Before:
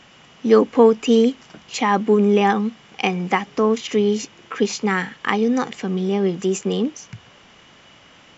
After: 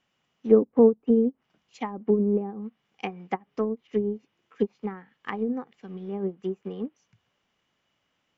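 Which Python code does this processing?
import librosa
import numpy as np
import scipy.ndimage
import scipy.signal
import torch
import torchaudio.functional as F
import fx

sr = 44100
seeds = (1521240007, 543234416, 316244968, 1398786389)

y = fx.env_lowpass_down(x, sr, base_hz=450.0, full_db=-13.0)
y = fx.upward_expand(y, sr, threshold_db=-29.0, expansion=2.5)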